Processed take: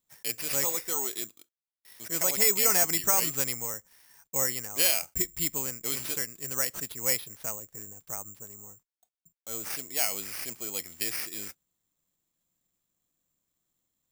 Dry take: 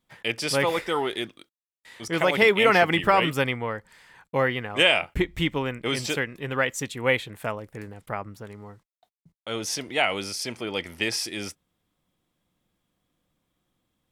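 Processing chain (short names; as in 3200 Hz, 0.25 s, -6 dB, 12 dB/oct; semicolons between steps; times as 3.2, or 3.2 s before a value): 7.68–9.7 bell 3000 Hz -5 dB 1.5 oct; careless resampling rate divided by 6×, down none, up zero stuff; gain -12.5 dB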